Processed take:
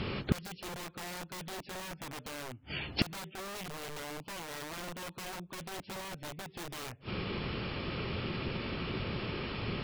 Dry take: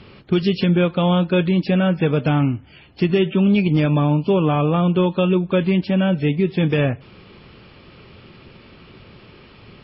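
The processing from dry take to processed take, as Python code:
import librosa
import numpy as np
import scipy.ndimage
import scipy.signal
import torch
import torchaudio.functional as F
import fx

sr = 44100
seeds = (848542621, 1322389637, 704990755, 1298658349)

y = (np.mod(10.0 ** (15.0 / 20.0) * x + 1.0, 2.0) - 1.0) / 10.0 ** (15.0 / 20.0)
y = fx.gate_flip(y, sr, shuts_db=-22.0, range_db=-30)
y = y * 10.0 ** (7.5 / 20.0)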